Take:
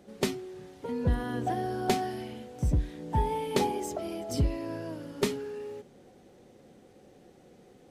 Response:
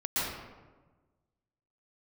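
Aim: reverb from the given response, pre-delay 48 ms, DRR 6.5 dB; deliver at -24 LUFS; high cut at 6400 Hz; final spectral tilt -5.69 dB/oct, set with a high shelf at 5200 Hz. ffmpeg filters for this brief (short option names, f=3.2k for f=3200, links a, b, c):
-filter_complex "[0:a]lowpass=6.4k,highshelf=f=5.2k:g=5,asplit=2[a][b];[1:a]atrim=start_sample=2205,adelay=48[c];[b][c]afir=irnorm=-1:irlink=0,volume=-15dB[d];[a][d]amix=inputs=2:normalize=0,volume=7dB"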